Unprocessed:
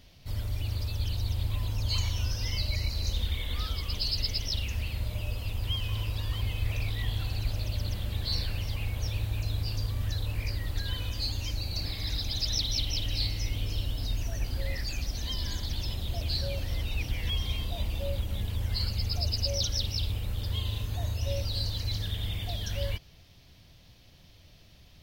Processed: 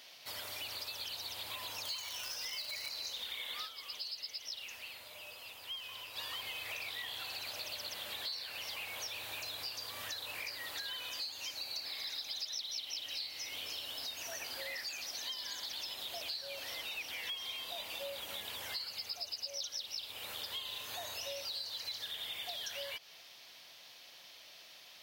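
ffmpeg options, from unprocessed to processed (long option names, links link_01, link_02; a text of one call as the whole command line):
ffmpeg -i in.wav -filter_complex "[0:a]asettb=1/sr,asplit=3[link_01][link_02][link_03];[link_01]atrim=end=1.854[link_04];[link_02]atrim=start=1.85:end=2.89,asetpts=PTS-STARTPTS,afade=type=in:duration=0.004:curve=qsin,afade=type=out:start_time=1.036:duration=0.004:curve=qsin,acrusher=bits=4:mode=log:mix=0:aa=0.000001[link_05];[link_03]atrim=start=2.886[link_06];[link_04][link_05]acrossfade=duration=0.004:curve1=hsin:curve2=qsin[link_07];[link_07][link_06]acrossfade=duration=0.004:curve1=qsin:curve2=hsin,asplit=3[link_08][link_09][link_10];[link_08]atrim=end=3.94,asetpts=PTS-STARTPTS,afade=type=out:start_time=3.65:duration=0.29:curve=exp:silence=0.281838[link_11];[link_09]atrim=start=3.94:end=5.91,asetpts=PTS-STARTPTS,volume=-11dB[link_12];[link_10]atrim=start=5.91,asetpts=PTS-STARTPTS,afade=type=in:duration=0.29:curve=exp:silence=0.281838[link_13];[link_11][link_12][link_13]concat=n=3:v=0:a=1,highpass=760,acompressor=threshold=-46dB:ratio=6,volume=6.5dB" out.wav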